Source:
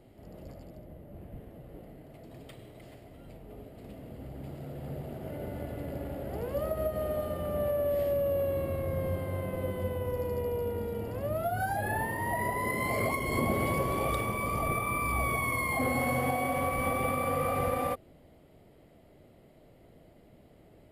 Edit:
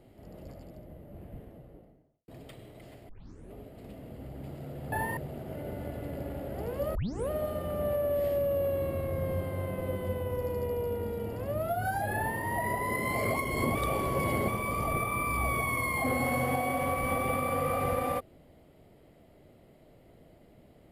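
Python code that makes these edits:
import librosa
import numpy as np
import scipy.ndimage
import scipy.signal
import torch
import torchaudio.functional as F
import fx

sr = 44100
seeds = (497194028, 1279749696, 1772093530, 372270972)

y = fx.studio_fade_out(x, sr, start_s=1.31, length_s=0.97)
y = fx.edit(y, sr, fx.tape_start(start_s=3.09, length_s=0.44),
    fx.tape_start(start_s=6.7, length_s=0.35),
    fx.duplicate(start_s=11.92, length_s=0.25, to_s=4.92),
    fx.reverse_span(start_s=13.5, length_s=0.73), tone=tone)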